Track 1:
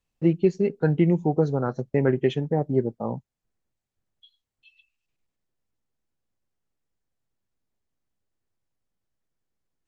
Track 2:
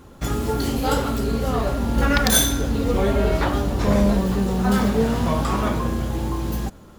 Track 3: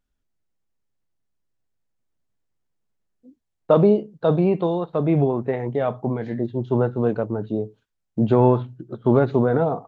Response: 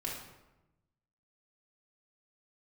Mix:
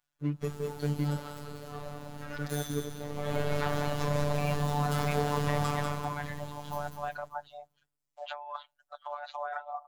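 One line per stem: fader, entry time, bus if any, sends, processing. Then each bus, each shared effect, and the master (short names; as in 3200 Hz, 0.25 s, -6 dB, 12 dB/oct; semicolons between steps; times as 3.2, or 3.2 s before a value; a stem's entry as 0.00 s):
-8.0 dB, 0.00 s, muted 1.2–2.39, no send, no echo send, median filter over 41 samples
3.09 s -15.5 dB -> 3.33 s -4.5 dB -> 5.69 s -4.5 dB -> 6.07 s -11.5 dB, 0.20 s, no send, echo send -5.5 dB, bell 320 Hz -11.5 dB 0.56 oct; limiter -13 dBFS, peak gain reduction 10 dB; wow and flutter 29 cents
-1.0 dB, 0.00 s, no send, no echo send, steep high-pass 610 Hz 96 dB/oct; reverb removal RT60 0.71 s; negative-ratio compressor -35 dBFS, ratio -1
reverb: off
echo: feedback echo 0.194 s, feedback 36%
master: robotiser 146 Hz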